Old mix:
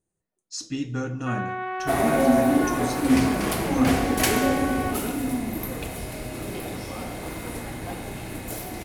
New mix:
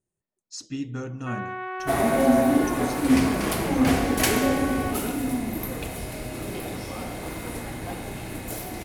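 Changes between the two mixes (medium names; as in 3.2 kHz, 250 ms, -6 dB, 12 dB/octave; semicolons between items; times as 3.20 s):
speech: send off; first sound: send -8.5 dB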